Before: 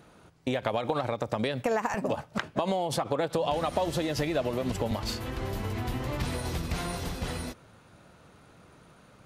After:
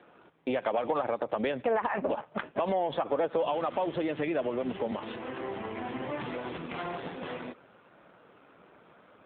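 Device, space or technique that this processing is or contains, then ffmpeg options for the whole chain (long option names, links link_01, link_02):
telephone: -filter_complex "[0:a]asettb=1/sr,asplit=3[link_01][link_02][link_03];[link_01]atrim=end=3.434[link_04];[link_02]atrim=start=3.43:end=5.01,asetpts=PTS-STARTPTS,afade=type=in:duration=0.004:curve=qsin,afade=type=out:start_time=1.576:duration=0.004:curve=qsin,equalizer=frequency=670:width=1.3:gain=-3[link_05];[link_03]atrim=start=5.006[link_06];[link_04][link_05]acrossfade=duration=0.004:curve1=hsin:curve2=qsin[link_07];[link_07][link_06]acrossfade=duration=0.004:curve1=qsin:curve2=hsin,highpass=270,lowpass=3400,asoftclip=type=tanh:threshold=-21dB,volume=3dB" -ar 8000 -c:a libopencore_amrnb -b:a 7400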